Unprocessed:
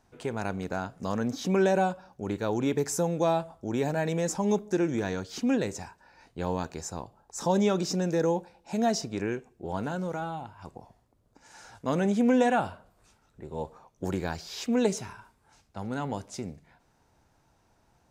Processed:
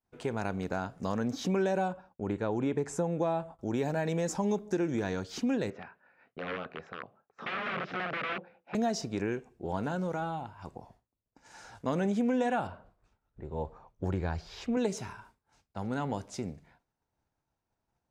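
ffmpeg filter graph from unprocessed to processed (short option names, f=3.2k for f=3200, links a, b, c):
-filter_complex "[0:a]asettb=1/sr,asplit=3[a][b][c];[a]atrim=end=1.884[d];[b]atrim=start=1.88:end=3.59,asetpts=PTS-STARTPTS,afade=t=in:d=0.004:c=qsin,afade=t=out:st=1.706:d=0.004:c=qsin,lowpass=f=9.1k:w=0.5412,lowpass=f=9.1k:w=1.3066,agate=range=-33dB:threshold=-48dB:ratio=3:release=100:detection=peak,equalizer=f=5.1k:w=1.2:g=-11[e];[c]atrim=start=3.586[f];[d][e]acrossfade=d=0.004:c1=hsin:c2=qsin[g];[g][f]acrossfade=d=0.004:c1=qsin:c2=hsin,asettb=1/sr,asplit=3[h][i][j];[h]atrim=end=5.704[k];[i]atrim=start=5.7:end=8.75,asetpts=PTS-STARTPTS,afade=t=in:d=0.004:c=qsin,afade=t=out:st=3.046:d=0.004:c=qsin,aeval=exprs='(mod(20*val(0)+1,2)-1)/20':c=same,highpass=200,equalizer=f=320:t=q:w=4:g=-7,equalizer=f=910:t=q:w=4:g=-10,equalizer=f=1.3k:t=q:w=4:g=4,lowpass=f=2.7k:w=0.5412,lowpass=f=2.7k:w=1.3066[l];[j]atrim=start=8.746[m];[k][l]acrossfade=d=0.004:c1=hsin:c2=qsin[n];[n][m]acrossfade=d=0.004:c1=qsin:c2=hsin,asettb=1/sr,asplit=3[o][p][q];[o]atrim=end=12.674[r];[p]atrim=start=12.67:end=14.77,asetpts=PTS-STARTPTS,afade=t=in:d=0.004:c=qsin,afade=t=out:st=2.096:d=0.004:c=qsin,lowpass=f=2.1k:p=1,asubboost=boost=6.5:cutoff=110[s];[q]atrim=start=14.766[t];[r][s]acrossfade=d=0.004:c1=hsin:c2=qsin[u];[u][t]acrossfade=d=0.004:c1=qsin:c2=hsin,agate=range=-33dB:threshold=-54dB:ratio=3:detection=peak,highshelf=f=6.3k:g=-5.5,acompressor=threshold=-27dB:ratio=3"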